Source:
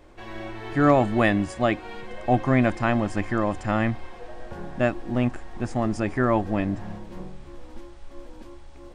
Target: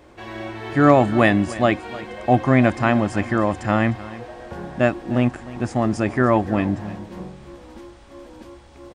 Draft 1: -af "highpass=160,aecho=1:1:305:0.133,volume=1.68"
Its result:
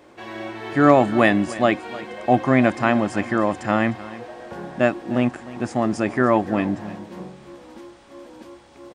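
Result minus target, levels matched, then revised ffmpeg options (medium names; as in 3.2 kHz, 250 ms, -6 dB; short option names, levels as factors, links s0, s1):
125 Hz band -4.5 dB
-af "highpass=62,aecho=1:1:305:0.133,volume=1.68"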